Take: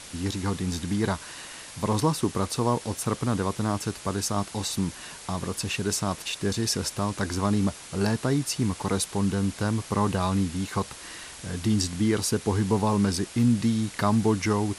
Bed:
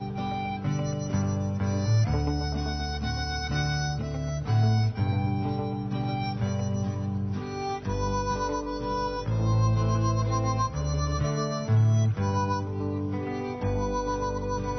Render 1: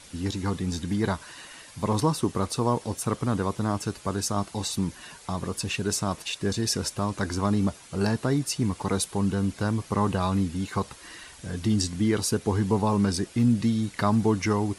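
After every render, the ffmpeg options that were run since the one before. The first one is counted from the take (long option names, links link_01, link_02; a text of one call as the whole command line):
ffmpeg -i in.wav -af "afftdn=noise_reduction=8:noise_floor=-43" out.wav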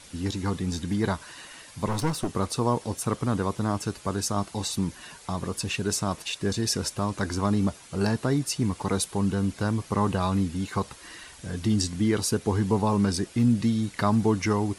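ffmpeg -i in.wav -filter_complex "[0:a]asettb=1/sr,asplit=3[link_01][link_02][link_03];[link_01]atrim=end=1.884[link_04];[link_02]atrim=start=1.88:end=2.31,asetpts=PTS-STARTPTS,afade=type=in:duration=0.004:curve=qsin,afade=type=out:start_time=0.426:duration=0.004:curve=qsin,aeval=exprs='clip(val(0),-1,0.0355)':channel_layout=same[link_05];[link_03]atrim=start=2.306[link_06];[link_04][link_05]acrossfade=duration=0.004:curve1=hsin:curve2=qsin[link_07];[link_07][link_06]acrossfade=duration=0.004:curve1=qsin:curve2=hsin" out.wav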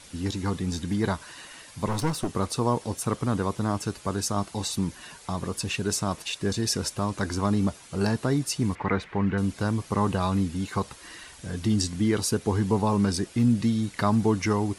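ffmpeg -i in.wav -filter_complex "[0:a]asettb=1/sr,asplit=3[link_01][link_02][link_03];[link_01]atrim=end=8.754[link_04];[link_02]atrim=start=8.75:end=9.38,asetpts=PTS-STARTPTS,afade=type=in:duration=0.004:curve=qsin,afade=type=out:start_time=0.626:duration=0.004:curve=qsin,lowpass=frequency=2000:width_type=q:width=3.5[link_05];[link_03]atrim=start=9.376[link_06];[link_04][link_05]acrossfade=duration=0.004:curve1=hsin:curve2=qsin[link_07];[link_07][link_06]acrossfade=duration=0.004:curve1=qsin:curve2=hsin" out.wav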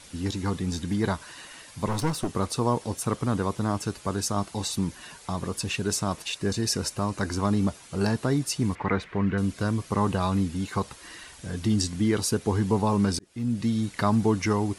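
ffmpeg -i in.wav -filter_complex "[0:a]asettb=1/sr,asplit=3[link_01][link_02][link_03];[link_01]atrim=end=6.364[link_04];[link_02]atrim=start=6.36:end=7.34,asetpts=PTS-STARTPTS,afade=type=in:duration=0.004:curve=qsin,afade=type=out:start_time=0.976:duration=0.004:curve=qsin,bandreject=frequency=3400:width=10[link_05];[link_03]atrim=start=7.336[link_06];[link_04][link_05]acrossfade=duration=0.004:curve1=hsin:curve2=qsin[link_07];[link_07][link_06]acrossfade=duration=0.004:curve1=qsin:curve2=hsin,asettb=1/sr,asplit=3[link_08][link_09][link_10];[link_08]atrim=end=9.044[link_11];[link_09]atrim=start=9.04:end=9.9,asetpts=PTS-STARTPTS,afade=type=in:duration=0.004:curve=qsin,afade=type=out:start_time=0.856:duration=0.004:curve=qsin,bandreject=frequency=840:width=6.6[link_12];[link_10]atrim=start=9.896[link_13];[link_11][link_12]acrossfade=duration=0.004:curve1=hsin:curve2=qsin[link_14];[link_14][link_13]acrossfade=duration=0.004:curve1=qsin:curve2=hsin,asplit=2[link_15][link_16];[link_15]atrim=end=13.19,asetpts=PTS-STARTPTS,afade=type=out:start_time=13.186:duration=0.004:curve=hsin[link_17];[link_16]atrim=start=13.19,asetpts=PTS-STARTPTS,afade=type=in:duration=0.59[link_18];[link_17][link_18]concat=n=2:v=0:a=1" out.wav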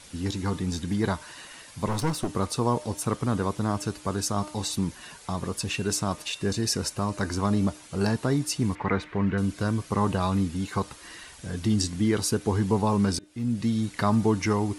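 ffmpeg -i in.wav -af "bandreject=frequency=303.1:width_type=h:width=4,bandreject=frequency=606.2:width_type=h:width=4,bandreject=frequency=909.3:width_type=h:width=4,bandreject=frequency=1212.4:width_type=h:width=4,bandreject=frequency=1515.5:width_type=h:width=4,bandreject=frequency=1818.6:width_type=h:width=4,bandreject=frequency=2121.7:width_type=h:width=4,bandreject=frequency=2424.8:width_type=h:width=4,bandreject=frequency=2727.9:width_type=h:width=4,bandreject=frequency=3031:width_type=h:width=4,bandreject=frequency=3334.1:width_type=h:width=4,bandreject=frequency=3637.2:width_type=h:width=4,bandreject=frequency=3940.3:width_type=h:width=4" out.wav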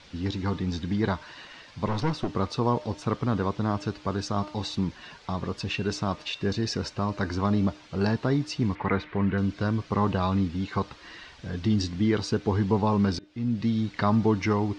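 ffmpeg -i in.wav -af "lowpass=frequency=4900:width=0.5412,lowpass=frequency=4900:width=1.3066" out.wav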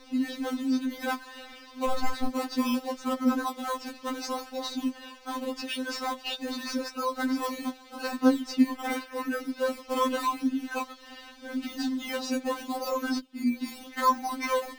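ffmpeg -i in.wav -filter_complex "[0:a]asplit=2[link_01][link_02];[link_02]acrusher=samples=14:mix=1:aa=0.000001:lfo=1:lforange=14:lforate=0.83,volume=-3.5dB[link_03];[link_01][link_03]amix=inputs=2:normalize=0,afftfilt=real='re*3.46*eq(mod(b,12),0)':imag='im*3.46*eq(mod(b,12),0)':win_size=2048:overlap=0.75" out.wav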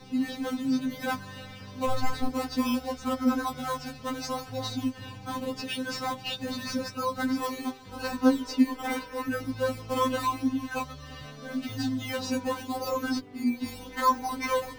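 ffmpeg -i in.wav -i bed.wav -filter_complex "[1:a]volume=-18.5dB[link_01];[0:a][link_01]amix=inputs=2:normalize=0" out.wav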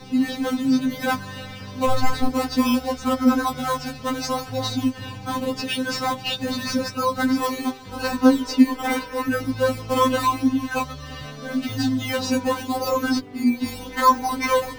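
ffmpeg -i in.wav -af "volume=7.5dB,alimiter=limit=-3dB:level=0:latency=1" out.wav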